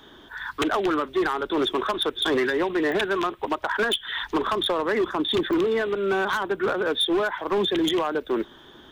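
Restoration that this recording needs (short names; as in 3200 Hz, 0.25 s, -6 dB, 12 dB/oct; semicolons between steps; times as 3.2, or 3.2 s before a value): clip repair -18.5 dBFS; de-click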